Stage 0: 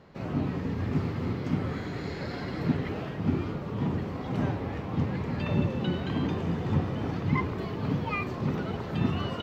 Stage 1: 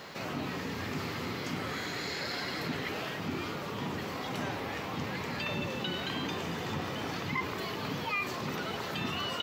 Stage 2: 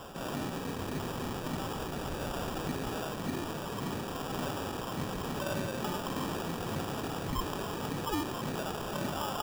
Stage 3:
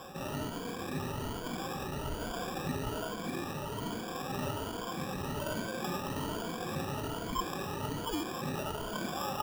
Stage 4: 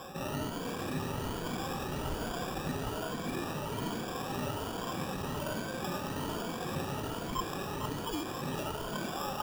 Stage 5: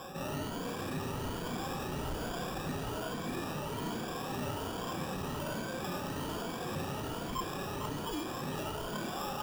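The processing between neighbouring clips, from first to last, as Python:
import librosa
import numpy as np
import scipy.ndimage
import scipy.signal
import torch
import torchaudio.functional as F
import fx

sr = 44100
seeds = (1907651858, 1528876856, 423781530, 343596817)

y1 = fx.tilt_eq(x, sr, slope=4.0)
y1 = fx.env_flatten(y1, sr, amount_pct=50)
y1 = F.gain(torch.from_numpy(y1), -4.5).numpy()
y2 = fx.sample_hold(y1, sr, seeds[0], rate_hz=2100.0, jitter_pct=0)
y3 = fx.spec_ripple(y2, sr, per_octave=1.8, drift_hz=1.2, depth_db=15)
y3 = F.gain(torch.from_numpy(y3), -3.5).numpy()
y4 = fx.rider(y3, sr, range_db=10, speed_s=0.5)
y4 = y4 + 10.0 ** (-8.5 / 20.0) * np.pad(y4, (int(452 * sr / 1000.0), 0))[:len(y4)]
y5 = 10.0 ** (-30.0 / 20.0) * np.tanh(y4 / 10.0 ** (-30.0 / 20.0))
y5 = fx.doubler(y5, sr, ms=33.0, db=-10.5)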